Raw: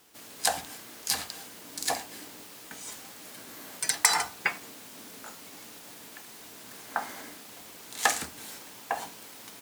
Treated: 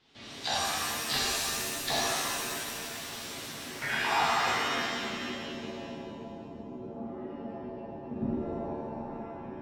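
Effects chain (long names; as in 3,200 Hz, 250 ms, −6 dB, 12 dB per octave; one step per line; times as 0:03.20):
pitch shifter gated in a rhythm −1 semitone, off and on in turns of 77 ms
low-pass filter 7,100 Hz
low-shelf EQ 180 Hz +11 dB
output level in coarse steps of 18 dB
low-pass filter sweep 3,700 Hz → 230 Hz, 0:03.52–0:04.83
reverb with rising layers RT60 2.1 s, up +7 semitones, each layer −2 dB, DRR −8 dB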